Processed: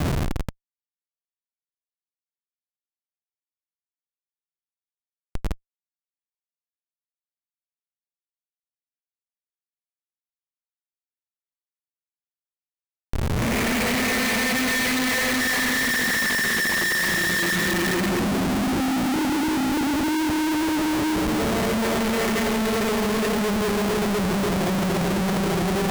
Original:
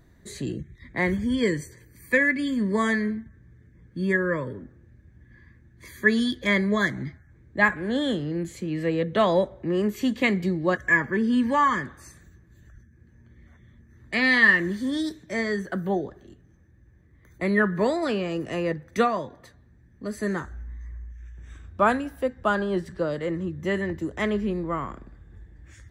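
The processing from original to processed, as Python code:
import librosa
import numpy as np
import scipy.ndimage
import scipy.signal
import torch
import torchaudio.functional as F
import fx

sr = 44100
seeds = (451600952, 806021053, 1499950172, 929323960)

p1 = fx.wiener(x, sr, points=41)
p2 = fx.low_shelf(p1, sr, hz=110.0, db=2.5)
p3 = fx.rider(p2, sr, range_db=4, speed_s=0.5)
p4 = p2 + F.gain(torch.from_numpy(p3), -0.5).numpy()
p5 = fx.paulstretch(p4, sr, seeds[0], factor=6.5, window_s=0.5, from_s=11.93)
y = fx.schmitt(p5, sr, flips_db=-35.5)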